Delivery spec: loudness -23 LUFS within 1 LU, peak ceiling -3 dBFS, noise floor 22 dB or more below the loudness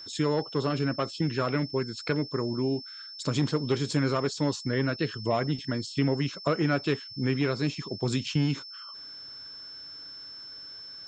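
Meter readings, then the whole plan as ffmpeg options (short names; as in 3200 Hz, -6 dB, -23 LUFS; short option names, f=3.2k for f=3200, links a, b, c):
steady tone 5300 Hz; tone level -41 dBFS; loudness -29.0 LUFS; peak -12.5 dBFS; loudness target -23.0 LUFS
-> -af "bandreject=f=5.3k:w=30"
-af "volume=6dB"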